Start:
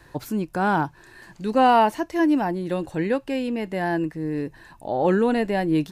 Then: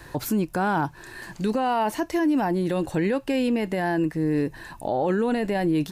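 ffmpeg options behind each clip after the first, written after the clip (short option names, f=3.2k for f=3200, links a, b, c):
-filter_complex "[0:a]asplit=2[a][b];[b]acompressor=threshold=-30dB:ratio=6,volume=1dB[c];[a][c]amix=inputs=2:normalize=0,highshelf=f=8k:g=4.5,alimiter=limit=-16dB:level=0:latency=1:release=20"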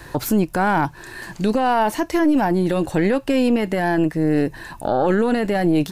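-af "aeval=exprs='0.168*(cos(1*acos(clip(val(0)/0.168,-1,1)))-cos(1*PI/2))+0.0299*(cos(2*acos(clip(val(0)/0.168,-1,1)))-cos(2*PI/2))':c=same,volume=5dB"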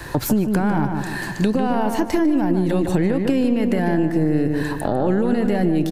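-filter_complex "[0:a]acrossover=split=370[a][b];[b]acompressor=threshold=-29dB:ratio=4[c];[a][c]amix=inputs=2:normalize=0,asplit=2[d][e];[e]adelay=150,lowpass=f=2.9k:p=1,volume=-6.5dB,asplit=2[f][g];[g]adelay=150,lowpass=f=2.9k:p=1,volume=0.48,asplit=2[h][i];[i]adelay=150,lowpass=f=2.9k:p=1,volume=0.48,asplit=2[j][k];[k]adelay=150,lowpass=f=2.9k:p=1,volume=0.48,asplit=2[l][m];[m]adelay=150,lowpass=f=2.9k:p=1,volume=0.48,asplit=2[n][o];[o]adelay=150,lowpass=f=2.9k:p=1,volume=0.48[p];[f][h][j][l][n][p]amix=inputs=6:normalize=0[q];[d][q]amix=inputs=2:normalize=0,acompressor=threshold=-20dB:ratio=6,volume=5.5dB"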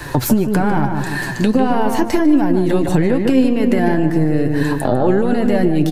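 -af "flanger=delay=6.6:depth=2.1:regen=45:speed=1.7:shape=triangular,volume=8.5dB"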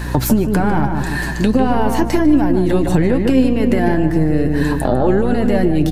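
-af "aeval=exprs='val(0)+0.0708*(sin(2*PI*60*n/s)+sin(2*PI*2*60*n/s)/2+sin(2*PI*3*60*n/s)/3+sin(2*PI*4*60*n/s)/4+sin(2*PI*5*60*n/s)/5)':c=same"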